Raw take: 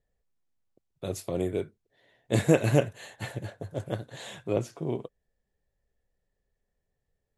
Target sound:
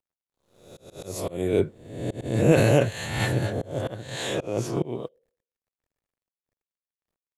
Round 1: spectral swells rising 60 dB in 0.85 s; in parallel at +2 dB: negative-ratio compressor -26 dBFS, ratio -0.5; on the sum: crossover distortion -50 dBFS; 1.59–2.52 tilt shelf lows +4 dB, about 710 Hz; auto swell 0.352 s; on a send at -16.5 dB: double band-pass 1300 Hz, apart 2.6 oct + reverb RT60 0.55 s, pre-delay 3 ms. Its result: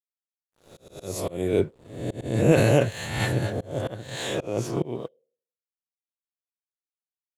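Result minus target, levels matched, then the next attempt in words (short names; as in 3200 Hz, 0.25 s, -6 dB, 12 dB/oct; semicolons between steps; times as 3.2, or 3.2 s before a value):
crossover distortion: distortion +10 dB
spectral swells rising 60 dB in 0.85 s; in parallel at +2 dB: negative-ratio compressor -26 dBFS, ratio -0.5; on the sum: crossover distortion -61 dBFS; 1.59–2.52 tilt shelf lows +4 dB, about 710 Hz; auto swell 0.352 s; on a send at -16.5 dB: double band-pass 1300 Hz, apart 2.6 oct + reverb RT60 0.55 s, pre-delay 3 ms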